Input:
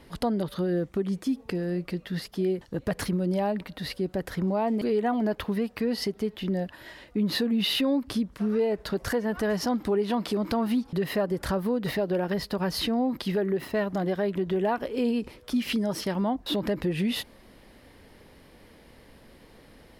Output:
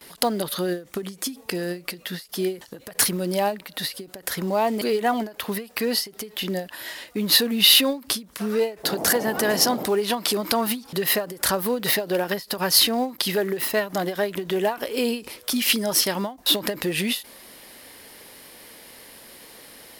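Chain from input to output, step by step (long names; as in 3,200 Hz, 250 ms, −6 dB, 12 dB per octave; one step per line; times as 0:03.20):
RIAA equalisation recording
0:08.83–0:09.85: noise in a band 150–790 Hz −38 dBFS
noise gate with hold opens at −44 dBFS
in parallel at −4.5 dB: floating-point word with a short mantissa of 2 bits
on the sum: every ending faded ahead of time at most 190 dB per second
level +3 dB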